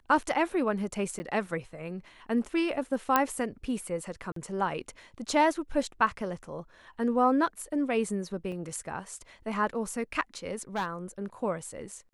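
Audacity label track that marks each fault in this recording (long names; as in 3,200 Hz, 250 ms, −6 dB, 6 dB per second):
1.190000	1.200000	drop-out 10 ms
3.160000	3.160000	click −8 dBFS
4.320000	4.360000	drop-out 43 ms
8.520000	8.520000	drop-out 2.4 ms
10.750000	10.860000	clipping −25.5 dBFS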